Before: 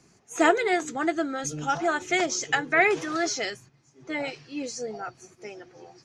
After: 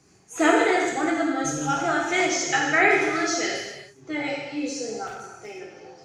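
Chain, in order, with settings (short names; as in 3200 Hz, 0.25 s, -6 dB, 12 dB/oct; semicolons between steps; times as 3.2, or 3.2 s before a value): non-linear reverb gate 0.43 s falling, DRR -3 dB; 5.07–5.59 overloaded stage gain 30.5 dB; gain -1.5 dB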